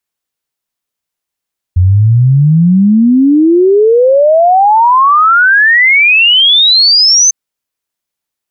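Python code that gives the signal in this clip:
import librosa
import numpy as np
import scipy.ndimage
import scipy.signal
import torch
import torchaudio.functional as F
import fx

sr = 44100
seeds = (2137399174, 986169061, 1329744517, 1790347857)

y = fx.ess(sr, length_s=5.55, from_hz=87.0, to_hz=6300.0, level_db=-3.5)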